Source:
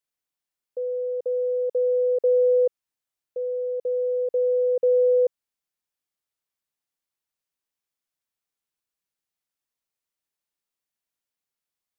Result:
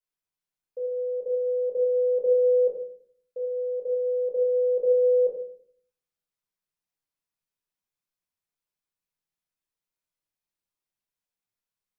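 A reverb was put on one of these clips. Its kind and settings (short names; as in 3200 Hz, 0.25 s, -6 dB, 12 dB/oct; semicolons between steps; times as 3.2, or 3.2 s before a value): shoebox room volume 680 m³, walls furnished, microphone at 5.1 m; gain -10 dB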